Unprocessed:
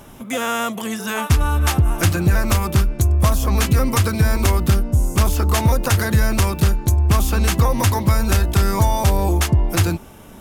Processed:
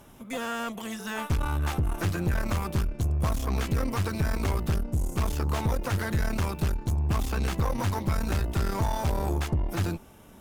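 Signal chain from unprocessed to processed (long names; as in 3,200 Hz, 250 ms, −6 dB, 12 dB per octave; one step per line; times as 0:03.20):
tube saturation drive 15 dB, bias 0.75
slew-rate limiting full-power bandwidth 160 Hz
level −5.5 dB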